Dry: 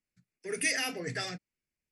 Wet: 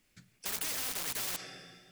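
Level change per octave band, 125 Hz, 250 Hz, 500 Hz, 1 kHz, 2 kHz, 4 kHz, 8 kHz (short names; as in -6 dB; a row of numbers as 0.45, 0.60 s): -10.0, -10.5, -11.0, -3.0, -9.5, -2.0, +0.5 dB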